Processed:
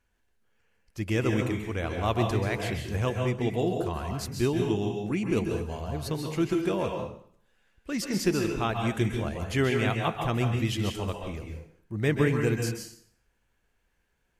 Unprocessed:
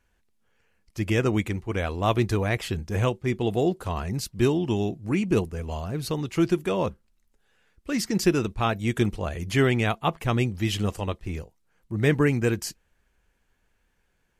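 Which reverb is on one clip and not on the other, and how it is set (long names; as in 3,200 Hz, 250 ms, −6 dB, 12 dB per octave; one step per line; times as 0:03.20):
dense smooth reverb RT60 0.59 s, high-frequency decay 0.9×, pre-delay 120 ms, DRR 2.5 dB
level −4.5 dB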